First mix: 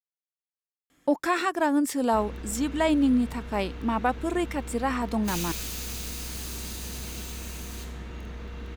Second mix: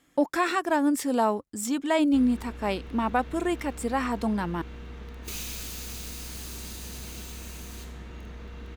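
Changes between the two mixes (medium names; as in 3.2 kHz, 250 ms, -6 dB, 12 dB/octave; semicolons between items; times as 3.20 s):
speech: entry -0.90 s; background -3.0 dB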